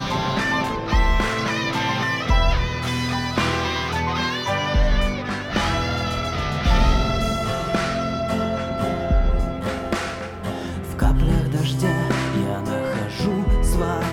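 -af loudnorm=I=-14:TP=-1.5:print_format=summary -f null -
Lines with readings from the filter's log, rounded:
Input Integrated:    -22.4 LUFS
Input True Peak:      -6.4 dBTP
Input LRA:             1.5 LU
Input Threshold:     -32.4 LUFS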